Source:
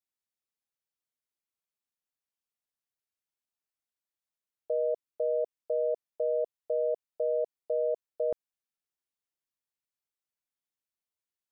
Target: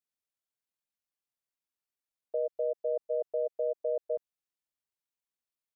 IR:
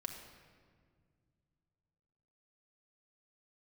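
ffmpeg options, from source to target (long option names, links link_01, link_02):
-af "atempo=2,volume=-1.5dB"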